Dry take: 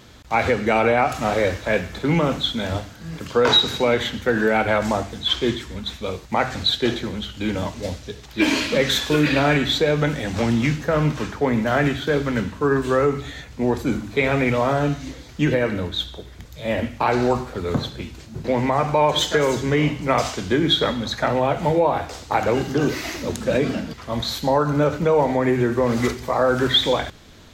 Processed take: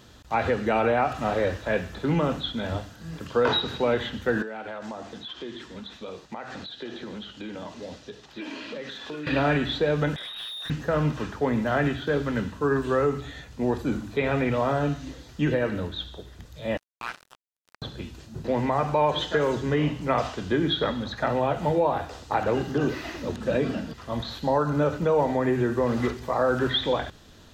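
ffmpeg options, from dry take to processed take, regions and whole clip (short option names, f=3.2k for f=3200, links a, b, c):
-filter_complex "[0:a]asettb=1/sr,asplit=3[a][b][c];[a]atrim=end=4.424[d];[b]atrim=start=4.42:end=9.27,asetpts=PTS-STARTPTS,afade=t=in:d=0.004:c=qsin,afade=t=out:st=4.846:d=0.004:c=qsin,acrossover=split=160 7100:gain=0.158 1 0.224[e][f][g];[e][f][g]amix=inputs=3:normalize=0,acompressor=threshold=-28dB:ratio=6:attack=3.2:release=140:knee=1:detection=peak[h];[c]atrim=start=9.266[i];[d][h]acrossfade=d=0.004:c1=hsin:c2=qsin[j];[j][i]acrossfade=d=0.004:c1=qsin:c2=hsin,asettb=1/sr,asplit=3[k][l][m];[k]atrim=end=10.164[n];[l]atrim=start=10.16:end=10.7,asetpts=PTS-STARTPTS,afade=t=in:d=0.004:c=qsin,afade=t=out:st=0.536:d=0.004:c=qsin,lowpass=f=3.3k:t=q:w=0.5098,lowpass=f=3.3k:t=q:w=0.6013,lowpass=f=3.3k:t=q:w=0.9,lowpass=f=3.3k:t=q:w=2.563,afreqshift=-3900,asoftclip=type=hard:threshold=-26dB[o];[m]atrim=start=10.696[p];[n][o]acrossfade=d=0.004:c1=hsin:c2=qsin[q];[q][p]acrossfade=d=0.004:c1=qsin:c2=hsin,asettb=1/sr,asplit=3[r][s][t];[r]atrim=end=16.774[u];[s]atrim=start=16.77:end=17.82,asetpts=PTS-STARTPTS,afade=t=in:d=0.004:c=qsin,afade=t=out:st=1.046:d=0.004:c=qsin,highpass=f=1.3k:w=0.5412,highpass=f=1.3k:w=1.3066,acrusher=bits=3:mix=0:aa=0.5[v];[t]atrim=start=17.816[w];[u][v]acrossfade=d=0.004:c1=hsin:c2=qsin[x];[x][w]acrossfade=d=0.004:c1=qsin:c2=hsin,acrossover=split=3700[y][z];[z]acompressor=threshold=-47dB:ratio=4:attack=1:release=60[aa];[y][aa]amix=inputs=2:normalize=0,bandreject=f=2.2k:w=7.8,volume=-4.5dB"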